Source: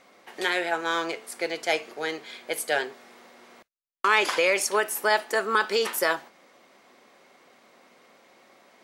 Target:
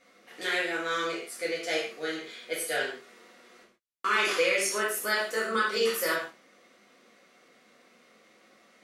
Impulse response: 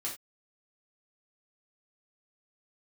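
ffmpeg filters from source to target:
-filter_complex "[0:a]equalizer=f=840:t=o:w=0.44:g=-11.5[a];[1:a]atrim=start_sample=2205,asetrate=28665,aresample=44100[b];[a][b]afir=irnorm=-1:irlink=0,volume=-6.5dB"

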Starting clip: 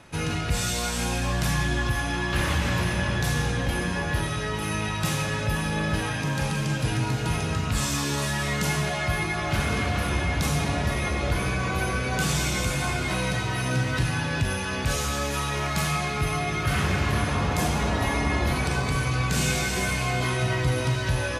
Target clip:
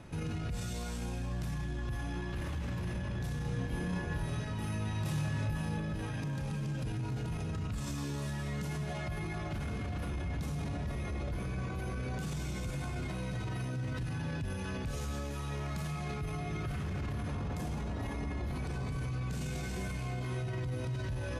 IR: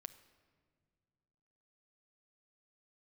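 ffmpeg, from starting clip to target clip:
-filter_complex "[0:a]lowshelf=f=490:g=12,alimiter=limit=-22.5dB:level=0:latency=1:release=53,asettb=1/sr,asplit=3[a][b][c];[a]atrim=end=3.424[d];[b]atrim=start=3.42:end=5.78,asetpts=PTS-STARTPTS,afade=t=in:d=0.004:c=qsin,afade=t=out:st=2.356:d=0.004:c=qsin,asplit=2[e][f];[f]adelay=27,volume=-2dB[g];[e][g]amix=inputs=2:normalize=0,atrim=end_sample=104076[h];[c]atrim=start=5.776[i];[d][h]acrossfade=d=0.004:c1=hsin:c2=qsin[j];[j][i]acrossfade=d=0.004:c1=qsin:c2=hsin,volume=-7.5dB"

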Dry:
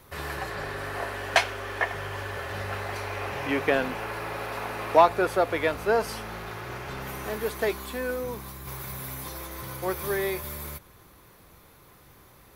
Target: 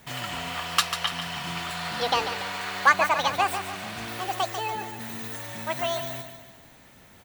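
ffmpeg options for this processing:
-filter_complex "[0:a]highshelf=f=9.9k:g=11,asplit=2[a][b];[b]aecho=0:1:249|498|747|996|1245|1494:0.355|0.174|0.0852|0.0417|0.0205|0.01[c];[a][c]amix=inputs=2:normalize=0,asetrate=76440,aresample=44100"

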